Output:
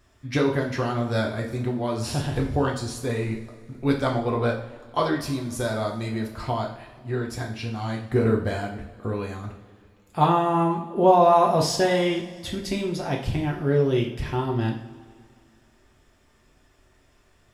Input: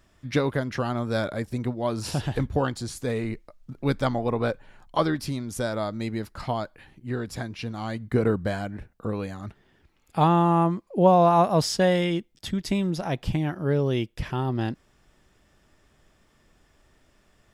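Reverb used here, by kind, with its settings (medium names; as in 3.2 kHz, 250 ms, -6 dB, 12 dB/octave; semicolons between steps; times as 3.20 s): two-slope reverb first 0.47 s, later 2.3 s, from -18 dB, DRR -1 dB; trim -1.5 dB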